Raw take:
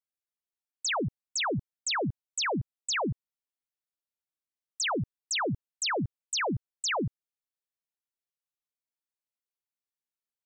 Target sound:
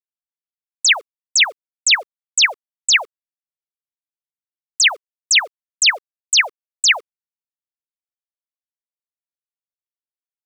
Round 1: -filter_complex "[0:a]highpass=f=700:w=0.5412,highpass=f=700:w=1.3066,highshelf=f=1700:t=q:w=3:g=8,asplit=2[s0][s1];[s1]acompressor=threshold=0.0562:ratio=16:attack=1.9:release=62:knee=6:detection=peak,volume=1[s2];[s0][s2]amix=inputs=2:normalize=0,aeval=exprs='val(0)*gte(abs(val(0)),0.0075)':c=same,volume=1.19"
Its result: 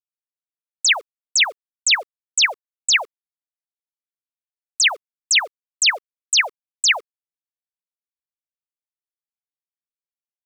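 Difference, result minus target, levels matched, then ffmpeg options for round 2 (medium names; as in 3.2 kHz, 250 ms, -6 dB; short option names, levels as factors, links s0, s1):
compression: peak gain reduction +8.5 dB
-filter_complex "[0:a]highpass=f=700:w=0.5412,highpass=f=700:w=1.3066,highshelf=f=1700:t=q:w=3:g=8,asplit=2[s0][s1];[s1]acompressor=threshold=0.178:ratio=16:attack=1.9:release=62:knee=6:detection=peak,volume=1[s2];[s0][s2]amix=inputs=2:normalize=0,aeval=exprs='val(0)*gte(abs(val(0)),0.0075)':c=same,volume=1.19"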